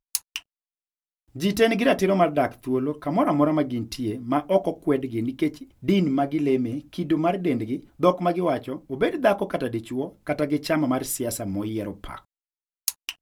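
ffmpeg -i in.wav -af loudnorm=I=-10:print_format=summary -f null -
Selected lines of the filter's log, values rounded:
Input Integrated:    -25.0 LUFS
Input True Peak:      -2.3 dBTP
Input LRA:             4.5 LU
Input Threshold:     -35.3 LUFS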